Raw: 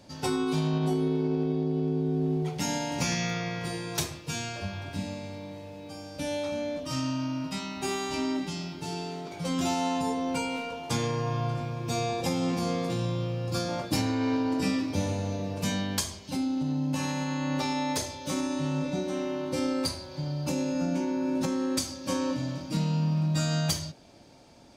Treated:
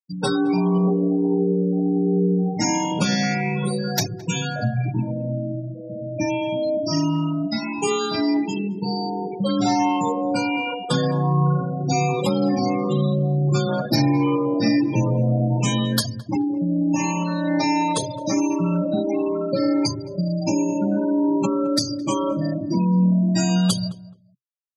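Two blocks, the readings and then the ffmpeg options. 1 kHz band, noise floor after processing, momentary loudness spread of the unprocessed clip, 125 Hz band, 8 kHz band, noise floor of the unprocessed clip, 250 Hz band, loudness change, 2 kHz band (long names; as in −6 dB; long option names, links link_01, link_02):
+8.5 dB, −35 dBFS, 8 LU, +8.5 dB, +5.0 dB, −43 dBFS, +9.0 dB, +8.0 dB, +6.0 dB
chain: -filter_complex "[0:a]afftfilt=real='re*pow(10,8/40*sin(2*PI*(0.68*log(max(b,1)*sr/1024/100)/log(2)-(1.4)*(pts-256)/sr)))':imag='im*pow(10,8/40*sin(2*PI*(0.68*log(max(b,1)*sr/1024/100)/log(2)-(1.4)*(pts-256)/sr)))':win_size=1024:overlap=0.75,afftfilt=real='re*gte(hypot(re,im),0.0355)':imag='im*gte(hypot(re,im),0.0355)':win_size=1024:overlap=0.75,afreqshift=27,asplit=2[link_01][link_02];[link_02]acompressor=threshold=-36dB:ratio=6,volume=3dB[link_03];[link_01][link_03]amix=inputs=2:normalize=0,equalizer=frequency=130:width_type=o:width=0.31:gain=5.5,asplit=2[link_04][link_05];[link_05]adelay=215,lowpass=frequency=1300:poles=1,volume=-16dB,asplit=2[link_06][link_07];[link_07]adelay=215,lowpass=frequency=1300:poles=1,volume=0.23[link_08];[link_06][link_08]amix=inputs=2:normalize=0[link_09];[link_04][link_09]amix=inputs=2:normalize=0,volume=4dB"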